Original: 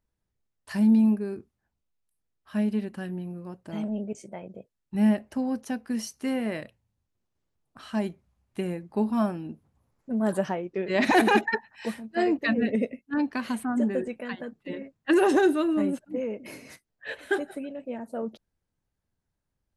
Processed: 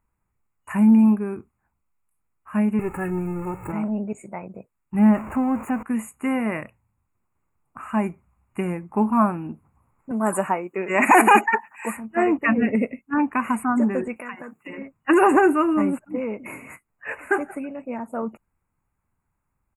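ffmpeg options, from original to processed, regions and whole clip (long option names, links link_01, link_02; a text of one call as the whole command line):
ffmpeg -i in.wav -filter_complex "[0:a]asettb=1/sr,asplit=3[link_01][link_02][link_03];[link_01]atrim=end=2.794[link_04];[link_02]atrim=start=2.79:end=3.72,asetpts=PTS-STARTPTS,afade=type=in:duration=0.004:curve=qsin,afade=type=out:start_time=0.926:duration=0.004:curve=qsin,aeval=exprs='val(0)+0.5*0.00668*sgn(val(0))':channel_layout=same,lowshelf=frequency=260:gain=8.5,aecho=1:1:2.3:0.89,atrim=end_sample=41013[link_05];[link_03]atrim=start=3.716[link_06];[link_04][link_05]acrossfade=duration=0.004:curve1=hsin:curve2=qsin[link_07];[link_07][link_06]acrossfade=duration=0.004:curve1=qsin:curve2=hsin,asettb=1/sr,asplit=3[link_08][link_09][link_10];[link_08]atrim=end=4.994[link_11];[link_09]atrim=start=4.99:end=5.83,asetpts=PTS-STARTPTS,afade=type=in:duration=0.004:curve=qsin,afade=type=out:start_time=0.836:duration=0.004:curve=qsin,aeval=exprs='val(0)+0.5*0.0178*sgn(val(0))':channel_layout=same,highshelf=frequency=2800:gain=-10[link_12];[link_10]atrim=start=5.826[link_13];[link_11][link_12]acrossfade=duration=0.004:curve1=hsin:curve2=qsin[link_14];[link_14][link_13]acrossfade=duration=0.004:curve1=qsin:curve2=hsin,asettb=1/sr,asplit=3[link_15][link_16][link_17];[link_15]atrim=end=10.114[link_18];[link_16]atrim=start=10.11:end=11.97,asetpts=PTS-STARTPTS,afade=type=in:duration=0.004:curve=qsin,afade=type=out:start_time=1.856:duration=0.004:curve=qsin,highpass=170,bass=frequency=250:gain=-4,treble=frequency=4000:gain=10[link_19];[link_17]atrim=start=11.966[link_20];[link_18][link_19]acrossfade=duration=0.004:curve1=hsin:curve2=qsin[link_21];[link_21][link_20]acrossfade=duration=0.004:curve1=qsin:curve2=hsin,asettb=1/sr,asplit=3[link_22][link_23][link_24];[link_22]atrim=end=14.164[link_25];[link_23]atrim=start=14.16:end=14.78,asetpts=PTS-STARTPTS,afade=type=in:duration=0.004:curve=qsin,afade=type=out:start_time=0.616:duration=0.004:curve=qsin,highpass=frequency=200:poles=1,highshelf=frequency=2500:gain=10,acompressor=threshold=-36dB:ratio=10:attack=3.2:release=140:knee=1:detection=peak[link_26];[link_24]atrim=start=14.776[link_27];[link_25][link_26]acrossfade=duration=0.004:curve1=hsin:curve2=qsin[link_28];[link_28][link_27]acrossfade=duration=0.004:curve1=qsin:curve2=hsin,afftfilt=real='re*(1-between(b*sr/4096,2900,6700))':imag='im*(1-between(b*sr/4096,2900,6700))':win_size=4096:overlap=0.75,equalizer=frequency=1100:width=0.83:gain=8,aecho=1:1:0.9:0.39,volume=3dB" out.wav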